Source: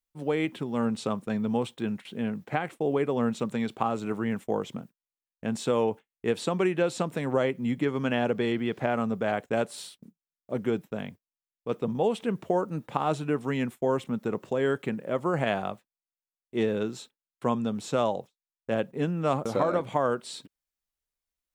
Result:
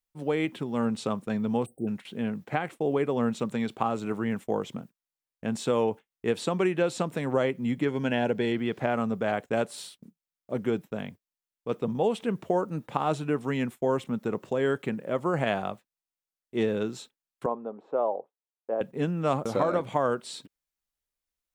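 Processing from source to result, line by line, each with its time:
0:01.66–0:01.87: time-frequency box erased 780–8,000 Hz
0:07.89–0:08.54: Butterworth band-reject 1,200 Hz, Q 4.5
0:17.46–0:18.81: flat-topped band-pass 610 Hz, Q 0.91

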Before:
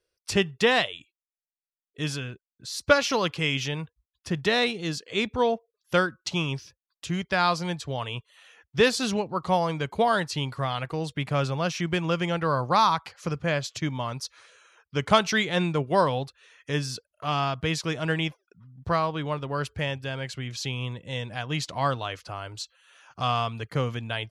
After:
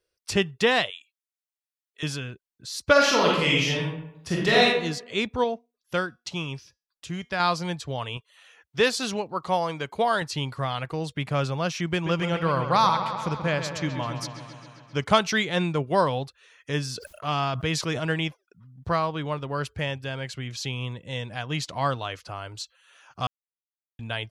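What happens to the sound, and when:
0:00.90–0:02.03: high-pass filter 1,100 Hz
0:02.92–0:04.64: thrown reverb, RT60 0.8 s, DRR −4 dB
0:05.44–0:07.40: tuned comb filter 240 Hz, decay 0.28 s, mix 40%
0:08.17–0:10.22: low-shelf EQ 180 Hz −10 dB
0:11.92–0:15.04: delay with a low-pass on its return 133 ms, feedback 69%, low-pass 4,000 Hz, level −9 dB
0:16.95–0:18.08: level that may fall only so fast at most 52 dB per second
0:23.27–0:23.99: silence

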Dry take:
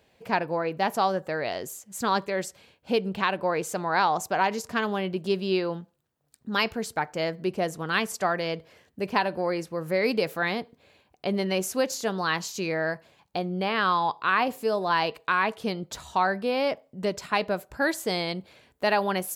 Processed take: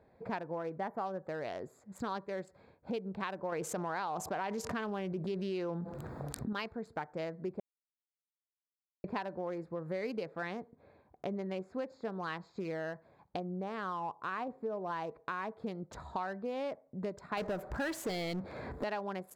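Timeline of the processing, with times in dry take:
0:00.79–0:01.06: gain on a spectral selection 2,300–11,000 Hz −16 dB
0:03.52–0:06.53: envelope flattener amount 70%
0:07.60–0:09.04: silence
0:10.23–0:12.65: high-frequency loss of the air 95 metres
0:13.40–0:15.57: low-pass filter 1,400 Hz 6 dB per octave
0:17.37–0:18.84: power curve on the samples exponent 0.5
whole clip: adaptive Wiener filter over 15 samples; high-shelf EQ 4,500 Hz −8 dB; downward compressor 3 to 1, threshold −40 dBFS; level +1 dB

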